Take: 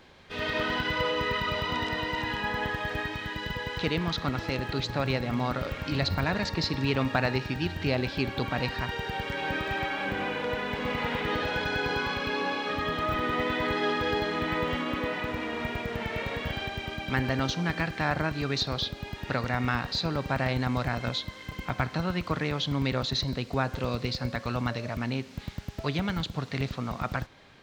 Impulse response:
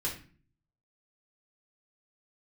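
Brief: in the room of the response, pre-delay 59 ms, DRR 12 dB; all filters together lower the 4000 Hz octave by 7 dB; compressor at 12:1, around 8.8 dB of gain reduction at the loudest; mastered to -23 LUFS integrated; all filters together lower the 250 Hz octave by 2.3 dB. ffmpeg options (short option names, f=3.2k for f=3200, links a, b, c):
-filter_complex "[0:a]equalizer=f=250:t=o:g=-3,equalizer=f=4k:t=o:g=-9,acompressor=threshold=-31dB:ratio=12,asplit=2[a][b];[1:a]atrim=start_sample=2205,adelay=59[c];[b][c]afir=irnorm=-1:irlink=0,volume=-16dB[d];[a][d]amix=inputs=2:normalize=0,volume=13dB"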